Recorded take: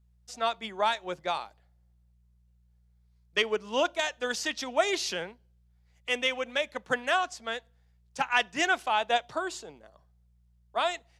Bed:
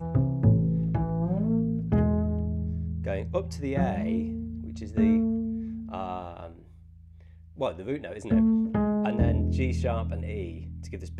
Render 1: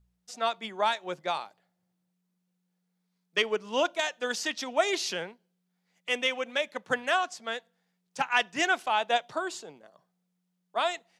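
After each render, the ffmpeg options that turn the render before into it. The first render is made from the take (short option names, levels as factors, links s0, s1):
-af "bandreject=f=60:t=h:w=4,bandreject=f=120:t=h:w=4"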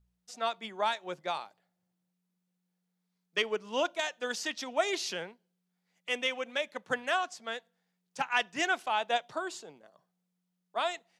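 -af "volume=0.668"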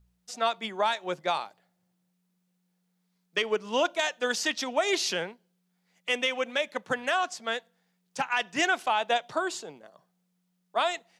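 -af "acontrast=71,alimiter=limit=0.168:level=0:latency=1:release=115"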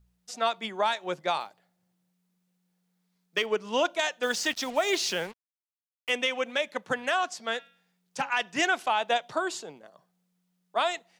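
-filter_complex "[0:a]asettb=1/sr,asplit=3[s0][s1][s2];[s0]atrim=end=1.404[s3];[s1]atrim=start=1.4:end=3.46,asetpts=PTS-STARTPTS,afade=t=in:d=0.004:c=qsin,afade=t=out:st=2.056:d=0.004:c=qsin,acrusher=bits=8:mode=log:mix=0:aa=0.000001[s4];[s2]atrim=start=3.456[s5];[s3][s4]acrossfade=d=0.004:c1=hsin:c2=qsin[s6];[s6][s5]acrossfade=d=0.004:c1=qsin:c2=hsin,asettb=1/sr,asplit=3[s7][s8][s9];[s7]atrim=end=4.234[s10];[s8]atrim=start=4.23:end=6.1,asetpts=PTS-STARTPTS,afade=t=in:d=0.004:c=qsin,afade=t=out:st=1.866:d=0.004:c=qsin,acrusher=bits=6:mix=0:aa=0.5[s11];[s9]atrim=start=6.096[s12];[s10][s11]acrossfade=d=0.004:c1=hsin:c2=qsin[s13];[s13][s12]acrossfade=d=0.004:c1=qsin:c2=hsin,asettb=1/sr,asplit=3[s14][s15][s16];[s14]atrim=end=7.334[s17];[s15]atrim=start=7.33:end=8.3,asetpts=PTS-STARTPTS,afade=t=in:d=0.004:c=qsin,afade=t=out:st=0.966:d=0.004:c=qsin,bandreject=f=276:t=h:w=4,bandreject=f=552:t=h:w=4,bandreject=f=828:t=h:w=4,bandreject=f=1104:t=h:w=4,bandreject=f=1380:t=h:w=4,bandreject=f=1656:t=h:w=4,bandreject=f=1932:t=h:w=4,bandreject=f=2208:t=h:w=4,bandreject=f=2484:t=h:w=4,bandreject=f=2760:t=h:w=4,bandreject=f=3036:t=h:w=4,bandreject=f=3312:t=h:w=4,bandreject=f=3588:t=h:w=4,bandreject=f=3864:t=h:w=4,bandreject=f=4140:t=h:w=4,bandreject=f=4416:t=h:w=4,bandreject=f=4692:t=h:w=4,bandreject=f=4968:t=h:w=4,bandreject=f=5244:t=h:w=4,bandreject=f=5520:t=h:w=4,bandreject=f=5796:t=h:w=4[s18];[s16]atrim=start=8.296[s19];[s17][s18]acrossfade=d=0.004:c1=hsin:c2=qsin[s20];[s20][s19]acrossfade=d=0.004:c1=qsin:c2=hsin"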